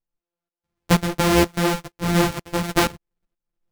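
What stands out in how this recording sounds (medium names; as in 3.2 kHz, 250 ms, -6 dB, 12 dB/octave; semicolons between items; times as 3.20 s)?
a buzz of ramps at a fixed pitch in blocks of 256 samples; tremolo saw up 2.1 Hz, depth 85%; a shimmering, thickened sound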